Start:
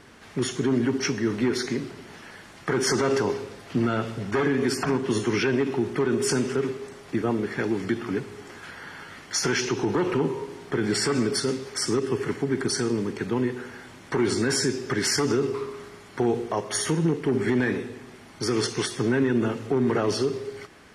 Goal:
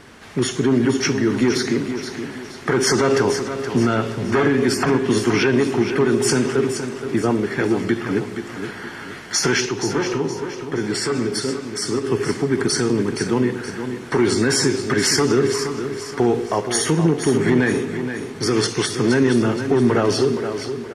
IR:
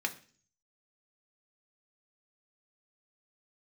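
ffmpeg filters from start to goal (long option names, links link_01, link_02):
-filter_complex "[0:a]asplit=3[link_01][link_02][link_03];[link_01]afade=type=out:start_time=9.65:duration=0.02[link_04];[link_02]flanger=delay=6.5:depth=6.5:regen=75:speed=1.1:shape=triangular,afade=type=in:start_time=9.65:duration=0.02,afade=type=out:start_time=12.04:duration=0.02[link_05];[link_03]afade=type=in:start_time=12.04:duration=0.02[link_06];[link_04][link_05][link_06]amix=inputs=3:normalize=0,aecho=1:1:472|944|1416|1888:0.355|0.142|0.0568|0.0227,volume=6dB"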